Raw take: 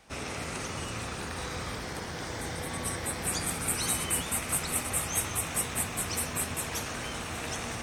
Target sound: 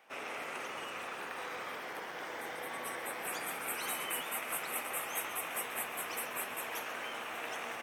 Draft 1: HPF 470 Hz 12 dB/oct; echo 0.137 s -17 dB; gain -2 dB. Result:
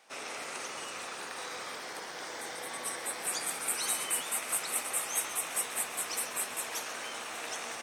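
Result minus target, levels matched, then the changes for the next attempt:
8000 Hz band +5.5 dB
add after HPF: band shelf 6100 Hz -11.5 dB 1.6 oct

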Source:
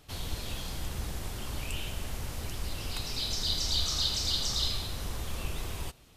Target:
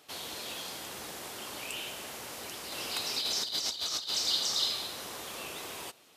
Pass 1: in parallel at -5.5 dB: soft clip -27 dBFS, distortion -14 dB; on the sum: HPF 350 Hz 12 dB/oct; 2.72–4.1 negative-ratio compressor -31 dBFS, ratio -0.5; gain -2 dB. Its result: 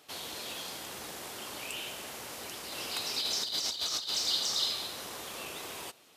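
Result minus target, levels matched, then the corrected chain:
soft clip: distortion +11 dB
in parallel at -5.5 dB: soft clip -19 dBFS, distortion -25 dB; on the sum: HPF 350 Hz 12 dB/oct; 2.72–4.1 negative-ratio compressor -31 dBFS, ratio -0.5; gain -2 dB

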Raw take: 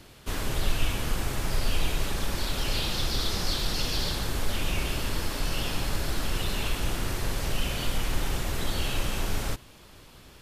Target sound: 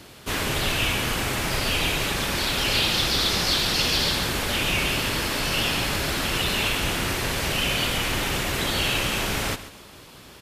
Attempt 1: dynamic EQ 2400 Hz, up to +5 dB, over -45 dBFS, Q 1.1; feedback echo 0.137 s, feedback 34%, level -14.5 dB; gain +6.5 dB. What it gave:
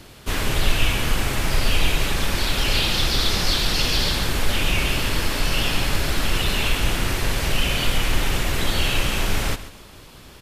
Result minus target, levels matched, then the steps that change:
125 Hz band +3.5 dB
add after dynamic EQ: HPF 120 Hz 6 dB/oct

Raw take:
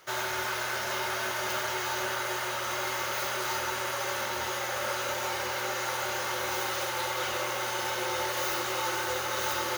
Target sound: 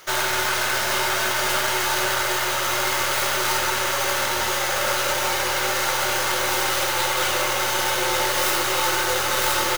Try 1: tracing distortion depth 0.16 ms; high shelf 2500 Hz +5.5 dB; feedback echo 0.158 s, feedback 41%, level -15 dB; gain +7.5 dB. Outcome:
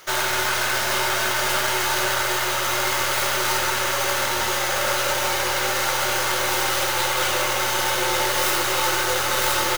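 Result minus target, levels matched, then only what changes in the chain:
echo-to-direct +11 dB
change: feedback echo 0.158 s, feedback 41%, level -26 dB

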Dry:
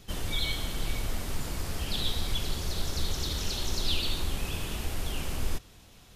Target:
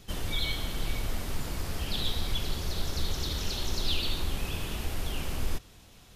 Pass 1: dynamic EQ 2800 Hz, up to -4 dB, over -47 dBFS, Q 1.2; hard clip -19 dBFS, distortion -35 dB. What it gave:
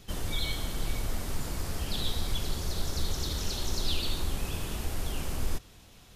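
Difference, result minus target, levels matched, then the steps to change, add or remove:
8000 Hz band +3.0 dB
change: dynamic EQ 8100 Hz, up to -4 dB, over -47 dBFS, Q 1.2

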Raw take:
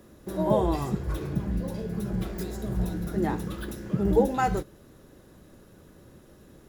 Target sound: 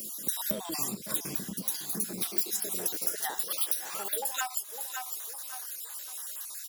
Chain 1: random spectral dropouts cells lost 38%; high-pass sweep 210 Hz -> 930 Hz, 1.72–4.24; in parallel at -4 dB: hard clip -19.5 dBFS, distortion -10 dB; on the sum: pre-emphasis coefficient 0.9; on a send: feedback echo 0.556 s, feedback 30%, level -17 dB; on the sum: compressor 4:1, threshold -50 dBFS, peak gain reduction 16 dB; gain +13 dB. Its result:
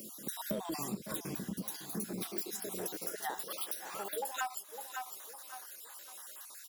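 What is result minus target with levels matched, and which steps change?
2000 Hz band +4.5 dB
add after compressor: high shelf 2400 Hz +10.5 dB

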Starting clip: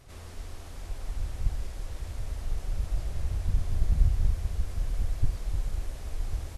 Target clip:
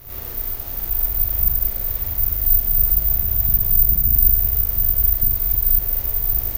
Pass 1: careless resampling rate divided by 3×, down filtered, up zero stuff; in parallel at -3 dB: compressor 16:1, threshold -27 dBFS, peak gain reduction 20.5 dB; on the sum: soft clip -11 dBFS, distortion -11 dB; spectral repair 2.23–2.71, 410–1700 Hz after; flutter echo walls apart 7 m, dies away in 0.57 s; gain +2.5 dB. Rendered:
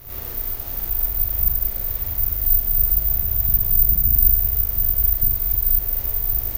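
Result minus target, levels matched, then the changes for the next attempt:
compressor: peak gain reduction +9.5 dB
change: compressor 16:1, threshold -17 dBFS, peak gain reduction 11.5 dB

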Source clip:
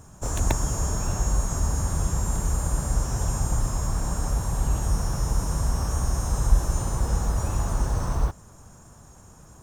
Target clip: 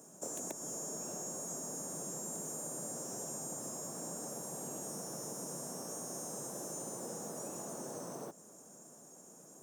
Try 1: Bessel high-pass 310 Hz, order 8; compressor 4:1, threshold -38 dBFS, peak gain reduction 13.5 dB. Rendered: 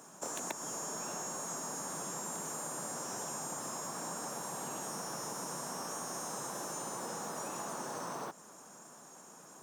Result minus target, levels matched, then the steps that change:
2000 Hz band +10.0 dB
add after compressor: band shelf 2000 Hz -12 dB 2.8 oct

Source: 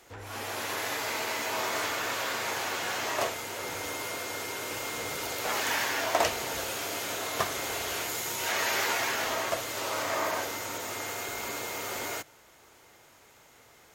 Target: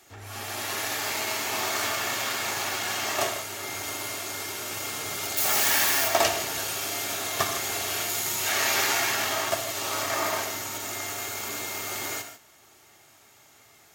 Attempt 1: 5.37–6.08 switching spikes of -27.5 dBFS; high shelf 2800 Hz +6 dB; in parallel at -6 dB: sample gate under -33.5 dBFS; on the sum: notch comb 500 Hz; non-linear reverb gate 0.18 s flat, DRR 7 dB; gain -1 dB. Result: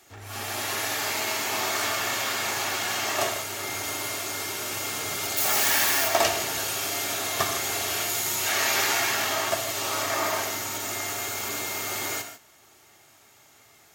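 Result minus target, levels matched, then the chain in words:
sample gate: distortion -10 dB
5.37–6.08 switching spikes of -27.5 dBFS; high shelf 2800 Hz +6 dB; in parallel at -6 dB: sample gate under -26 dBFS; on the sum: notch comb 500 Hz; non-linear reverb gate 0.18 s flat, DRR 7 dB; gain -1 dB

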